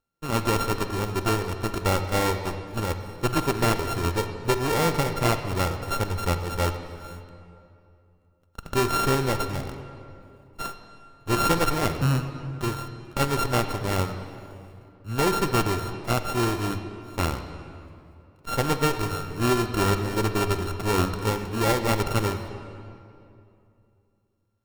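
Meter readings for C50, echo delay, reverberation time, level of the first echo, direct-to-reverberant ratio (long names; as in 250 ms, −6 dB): 8.5 dB, no echo audible, 2.7 s, no echo audible, 8.0 dB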